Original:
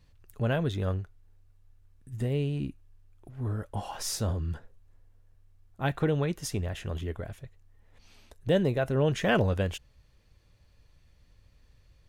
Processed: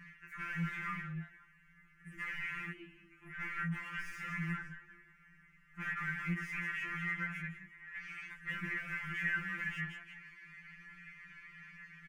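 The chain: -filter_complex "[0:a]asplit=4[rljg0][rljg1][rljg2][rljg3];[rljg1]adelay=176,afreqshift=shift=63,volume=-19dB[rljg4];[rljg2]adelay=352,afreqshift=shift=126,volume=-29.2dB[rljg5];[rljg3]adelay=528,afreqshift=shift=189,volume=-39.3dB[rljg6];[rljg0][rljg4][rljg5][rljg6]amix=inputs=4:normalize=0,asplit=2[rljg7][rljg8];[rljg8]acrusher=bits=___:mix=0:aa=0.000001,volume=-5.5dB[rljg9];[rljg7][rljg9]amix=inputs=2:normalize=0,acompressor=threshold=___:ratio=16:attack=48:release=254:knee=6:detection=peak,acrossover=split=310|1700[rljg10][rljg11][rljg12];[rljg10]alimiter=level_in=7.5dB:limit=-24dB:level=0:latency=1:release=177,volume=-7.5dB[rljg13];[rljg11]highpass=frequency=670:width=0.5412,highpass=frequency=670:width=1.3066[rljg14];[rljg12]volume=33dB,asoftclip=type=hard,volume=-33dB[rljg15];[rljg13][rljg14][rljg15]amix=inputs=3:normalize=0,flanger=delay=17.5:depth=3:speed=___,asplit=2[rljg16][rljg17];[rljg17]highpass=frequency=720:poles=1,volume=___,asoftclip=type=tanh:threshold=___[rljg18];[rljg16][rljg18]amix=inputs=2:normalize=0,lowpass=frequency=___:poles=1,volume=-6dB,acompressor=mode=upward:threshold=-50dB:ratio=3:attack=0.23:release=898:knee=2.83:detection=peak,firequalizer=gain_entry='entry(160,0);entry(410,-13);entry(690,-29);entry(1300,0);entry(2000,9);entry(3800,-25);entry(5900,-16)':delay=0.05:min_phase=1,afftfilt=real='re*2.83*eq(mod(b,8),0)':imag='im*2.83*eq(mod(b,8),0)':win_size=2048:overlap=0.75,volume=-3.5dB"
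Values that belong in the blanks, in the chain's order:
4, -31dB, 1.1, 37dB, -25.5dB, 3500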